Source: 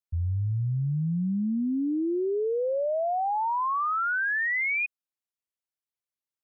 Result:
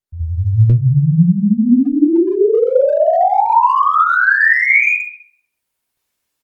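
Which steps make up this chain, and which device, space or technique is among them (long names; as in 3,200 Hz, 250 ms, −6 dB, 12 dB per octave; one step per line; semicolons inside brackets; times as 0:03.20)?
speakerphone in a meeting room (convolution reverb RT60 0.60 s, pre-delay 59 ms, DRR −7 dB; far-end echo of a speakerphone 130 ms, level −16 dB; automatic gain control gain up to 15 dB; level −1 dB; Opus 32 kbit/s 48,000 Hz)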